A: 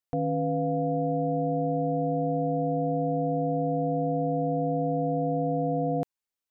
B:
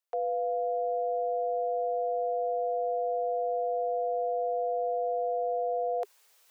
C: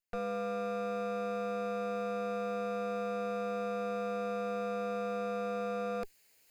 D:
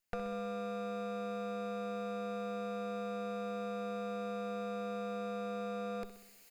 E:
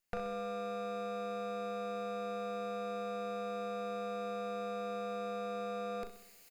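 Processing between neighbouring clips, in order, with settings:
steep high-pass 410 Hz 72 dB/oct; reverse; upward compressor, threshold -41 dBFS; reverse
minimum comb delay 0.43 ms; dynamic EQ 920 Hz, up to -6 dB, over -49 dBFS, Q 1.3; gain -1.5 dB
compressor 10:1, threshold -41 dBFS, peak gain reduction 8.5 dB; feedback echo 64 ms, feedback 59%, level -11.5 dB; gain +5.5 dB
doubler 37 ms -8 dB

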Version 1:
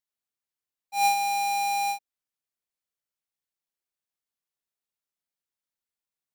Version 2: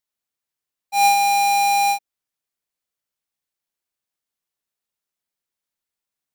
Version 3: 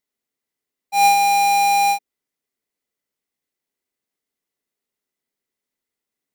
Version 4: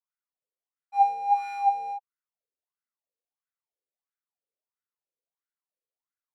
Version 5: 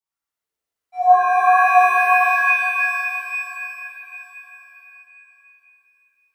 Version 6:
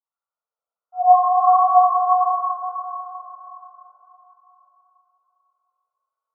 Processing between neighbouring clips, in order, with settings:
sample leveller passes 1; gain +6.5 dB
small resonant body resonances 260/400/2000 Hz, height 10 dB, ringing for 25 ms
wah 1.5 Hz 480–1500 Hz, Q 7.1
frequency shift -72 Hz; shimmer reverb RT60 3.5 s, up +7 st, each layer -2 dB, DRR -9 dB; gain -1 dB
brick-wall FIR band-pass 450–1500 Hz

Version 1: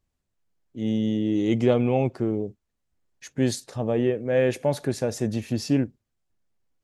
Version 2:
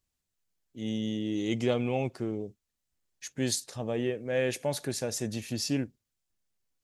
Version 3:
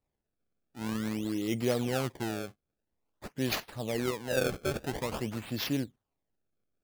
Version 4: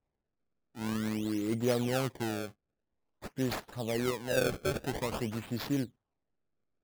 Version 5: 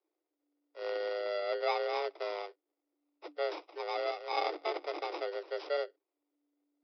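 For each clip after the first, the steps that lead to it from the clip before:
high shelf 2200 Hz +12 dB; gain -8 dB
decimation with a swept rate 26×, swing 160% 0.49 Hz; gain -1.5 dB
median filter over 15 samples
FFT order left unsorted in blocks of 32 samples; frequency shift +290 Hz; downsampling 11025 Hz; gain -1.5 dB

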